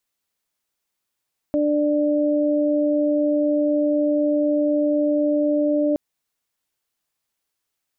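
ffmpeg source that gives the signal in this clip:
-f lavfi -i "aevalsrc='0.112*sin(2*PI*296*t)+0.1*sin(2*PI*592*t)':d=4.42:s=44100"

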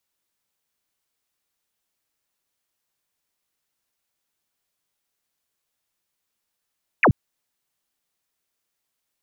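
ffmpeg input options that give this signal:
-f lavfi -i "aevalsrc='0.266*clip(t/0.002,0,1)*clip((0.08-t)/0.002,0,1)*sin(2*PI*2800*0.08/log(84/2800)*(exp(log(84/2800)*t/0.08)-1))':d=0.08:s=44100"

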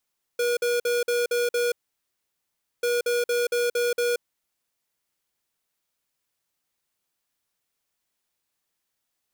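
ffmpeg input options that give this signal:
-f lavfi -i "aevalsrc='0.0668*(2*lt(mod(481*t,1),0.5)-1)*clip(min(mod(mod(t,2.44),0.23),0.18-mod(mod(t,2.44),0.23))/0.005,0,1)*lt(mod(t,2.44),1.38)':d=4.88:s=44100"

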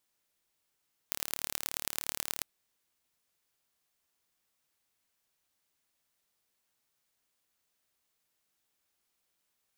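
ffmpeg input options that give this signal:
-f lavfi -i "aevalsrc='0.668*eq(mod(n,1192),0)*(0.5+0.5*eq(mod(n,4768),0))':d=1.3:s=44100"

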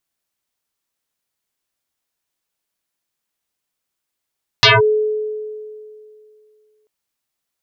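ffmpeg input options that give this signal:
-f lavfi -i "aevalsrc='0.531*pow(10,-3*t/2.49)*sin(2*PI*428*t+9.1*clip(1-t/0.18,0,1)*sin(2*PI*1.27*428*t))':d=2.24:s=44100"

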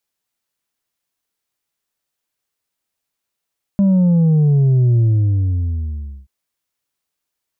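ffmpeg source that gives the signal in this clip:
-f lavfi -i "aevalsrc='0.299*clip((2.48-t)/1.29,0,1)*tanh(1.5*sin(2*PI*200*2.48/log(65/200)*(exp(log(65/200)*t/2.48)-1)))/tanh(1.5)':d=2.48:s=44100"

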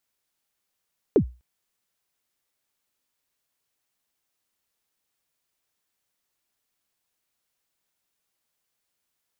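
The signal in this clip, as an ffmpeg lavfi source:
-f lavfi -i "aevalsrc='0.316*pow(10,-3*t/0.29)*sin(2*PI*(490*0.086/log(61/490)*(exp(log(61/490)*min(t,0.086)/0.086)-1)+61*max(t-0.086,0)))':d=0.25:s=44100"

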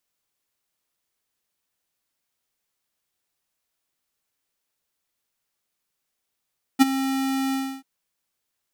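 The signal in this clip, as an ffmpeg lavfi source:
-f lavfi -i "aevalsrc='0.282*(2*lt(mod(268*t,1),0.5)-1)':d=1.037:s=44100,afade=t=in:d=0.027,afade=t=out:st=0.027:d=0.021:silence=0.211,afade=t=out:st=0.74:d=0.297"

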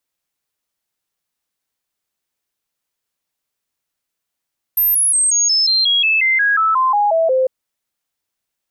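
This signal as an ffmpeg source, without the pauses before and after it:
-f lavfi -i "aevalsrc='0.266*clip(min(mod(t,0.18),0.18-mod(t,0.18))/0.005,0,1)*sin(2*PI*13200*pow(2,-floor(t/0.18)/3)*mod(t,0.18))':d=2.7:s=44100"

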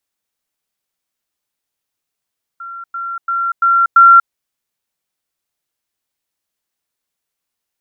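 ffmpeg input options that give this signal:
-f lavfi -i "aevalsrc='pow(10,(-26.5+6*floor(t/0.34))/20)*sin(2*PI*1370*t)*clip(min(mod(t,0.34),0.24-mod(t,0.34))/0.005,0,1)':d=1.7:s=44100"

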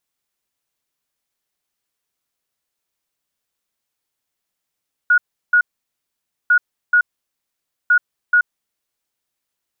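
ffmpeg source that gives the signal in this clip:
-f lavfi -i "aevalsrc='0.355*sin(2*PI*1450*t)*clip(min(mod(mod(t,1.4),0.43),0.08-mod(mod(t,1.4),0.43))/0.005,0,1)*lt(mod(t,1.4),0.86)':d=4.2:s=44100"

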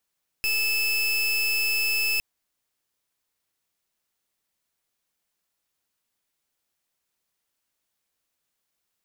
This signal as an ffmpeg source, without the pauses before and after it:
-f lavfi -i "aevalsrc='0.0631*(2*lt(mod(2620*t,1),0.31)-1)':d=1.76:s=44100"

